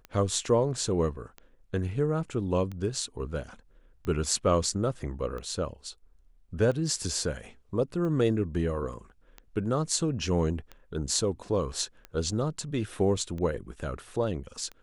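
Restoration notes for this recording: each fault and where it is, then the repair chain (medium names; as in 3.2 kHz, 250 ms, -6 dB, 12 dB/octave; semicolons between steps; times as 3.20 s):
tick 45 rpm -26 dBFS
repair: de-click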